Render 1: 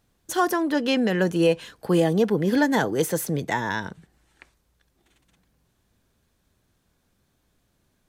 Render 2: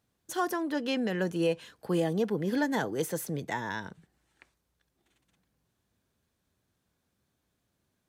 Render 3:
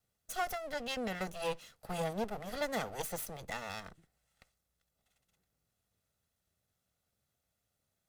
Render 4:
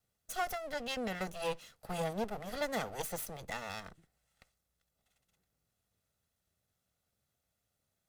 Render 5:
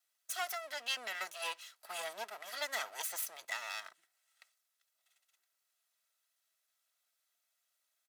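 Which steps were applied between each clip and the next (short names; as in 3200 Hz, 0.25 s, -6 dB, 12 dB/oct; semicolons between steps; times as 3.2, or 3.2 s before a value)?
HPF 65 Hz; gain -8 dB
minimum comb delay 1.5 ms; high shelf 5400 Hz +6 dB; gain -5.5 dB
nothing audible
HPF 1200 Hz 12 dB/oct; comb 3.1 ms, depth 40%; gain +3 dB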